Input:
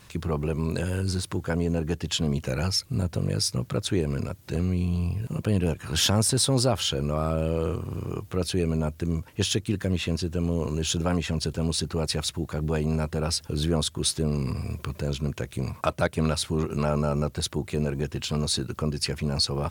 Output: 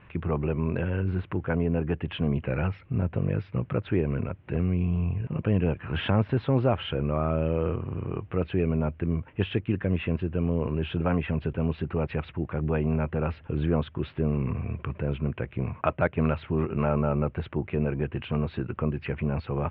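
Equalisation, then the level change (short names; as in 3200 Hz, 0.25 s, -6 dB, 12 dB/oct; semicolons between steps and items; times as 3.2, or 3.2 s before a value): steep low-pass 2800 Hz 48 dB/oct; 0.0 dB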